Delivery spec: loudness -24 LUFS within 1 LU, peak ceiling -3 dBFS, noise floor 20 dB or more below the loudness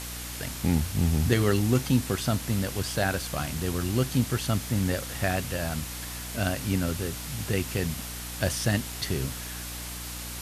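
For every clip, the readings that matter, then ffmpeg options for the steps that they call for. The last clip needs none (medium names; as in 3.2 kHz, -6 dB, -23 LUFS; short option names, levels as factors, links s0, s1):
hum 60 Hz; highest harmonic 300 Hz; hum level -38 dBFS; noise floor -37 dBFS; noise floor target -49 dBFS; loudness -28.5 LUFS; peak level -9.5 dBFS; loudness target -24.0 LUFS
-> -af "bandreject=f=60:t=h:w=4,bandreject=f=120:t=h:w=4,bandreject=f=180:t=h:w=4,bandreject=f=240:t=h:w=4,bandreject=f=300:t=h:w=4"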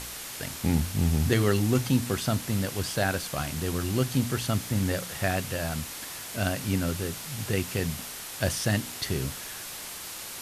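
hum not found; noise floor -39 dBFS; noise floor target -49 dBFS
-> -af "afftdn=nr=10:nf=-39"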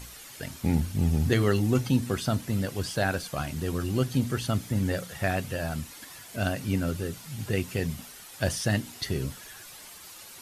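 noise floor -47 dBFS; noise floor target -49 dBFS
-> -af "afftdn=nr=6:nf=-47"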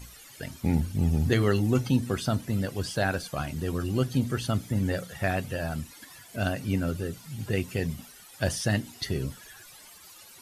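noise floor -50 dBFS; loudness -29.0 LUFS; peak level -10.5 dBFS; loudness target -24.0 LUFS
-> -af "volume=1.78"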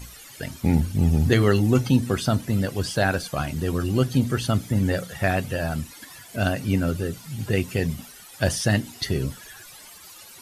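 loudness -24.0 LUFS; peak level -5.5 dBFS; noise floor -45 dBFS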